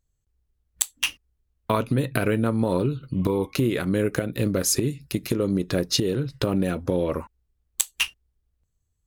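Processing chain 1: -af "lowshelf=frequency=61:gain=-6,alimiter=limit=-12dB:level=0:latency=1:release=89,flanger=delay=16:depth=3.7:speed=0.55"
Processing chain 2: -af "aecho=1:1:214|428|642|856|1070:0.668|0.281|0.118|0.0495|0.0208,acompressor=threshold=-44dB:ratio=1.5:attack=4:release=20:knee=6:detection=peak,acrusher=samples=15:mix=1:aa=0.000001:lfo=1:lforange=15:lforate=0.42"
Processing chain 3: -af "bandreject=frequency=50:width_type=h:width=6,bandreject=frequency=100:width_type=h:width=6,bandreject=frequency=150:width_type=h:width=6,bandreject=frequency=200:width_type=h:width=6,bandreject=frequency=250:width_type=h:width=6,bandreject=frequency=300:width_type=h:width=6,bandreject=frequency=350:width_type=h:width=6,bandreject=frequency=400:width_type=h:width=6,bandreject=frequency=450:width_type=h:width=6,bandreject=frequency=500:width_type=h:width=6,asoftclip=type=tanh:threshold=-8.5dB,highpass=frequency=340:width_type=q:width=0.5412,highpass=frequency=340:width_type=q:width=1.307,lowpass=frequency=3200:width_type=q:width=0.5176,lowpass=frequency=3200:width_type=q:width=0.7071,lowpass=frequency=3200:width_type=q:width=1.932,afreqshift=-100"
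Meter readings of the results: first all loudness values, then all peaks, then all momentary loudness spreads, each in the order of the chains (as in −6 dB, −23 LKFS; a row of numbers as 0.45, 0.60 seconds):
−29.5, −32.0, −30.0 LKFS; −13.5, −15.5, −11.0 dBFS; 9, 10, 8 LU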